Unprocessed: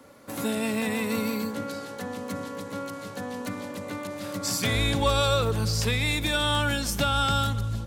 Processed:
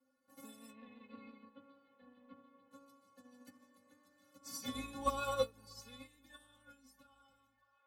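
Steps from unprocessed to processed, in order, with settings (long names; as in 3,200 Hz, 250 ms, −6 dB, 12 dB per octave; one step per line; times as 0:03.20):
fade-out on the ending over 2.50 s
0:00.70–0:02.71: Butterworth low-pass 3,700 Hz 48 dB per octave
stiff-string resonator 260 Hz, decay 0.32 s, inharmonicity 0.008
delay with a band-pass on its return 638 ms, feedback 75%, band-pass 1,200 Hz, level −15.5 dB
dynamic equaliser 2,000 Hz, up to −6 dB, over −57 dBFS, Q 0.73
expander for the loud parts 2.5 to 1, over −52 dBFS
level +8.5 dB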